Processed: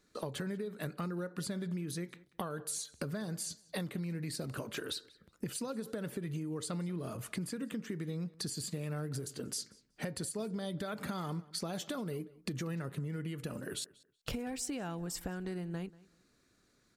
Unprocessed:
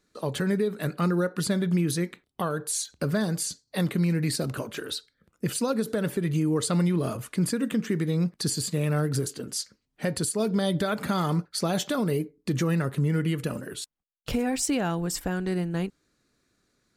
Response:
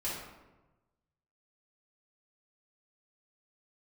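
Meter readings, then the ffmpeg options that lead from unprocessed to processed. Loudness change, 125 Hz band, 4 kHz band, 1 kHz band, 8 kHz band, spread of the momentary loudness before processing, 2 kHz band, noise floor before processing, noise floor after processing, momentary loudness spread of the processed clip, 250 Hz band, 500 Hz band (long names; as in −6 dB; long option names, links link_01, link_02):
−12.0 dB, −12.5 dB, −9.0 dB, −12.0 dB, −10.0 dB, 8 LU, −11.0 dB, −77 dBFS, −72 dBFS, 4 LU, −12.5 dB, −12.5 dB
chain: -filter_complex "[0:a]acompressor=threshold=-36dB:ratio=8,asplit=2[link_01][link_02];[link_02]adelay=187,lowpass=frequency=4500:poles=1,volume=-21dB,asplit=2[link_03][link_04];[link_04]adelay=187,lowpass=frequency=4500:poles=1,volume=0.23[link_05];[link_03][link_05]amix=inputs=2:normalize=0[link_06];[link_01][link_06]amix=inputs=2:normalize=0"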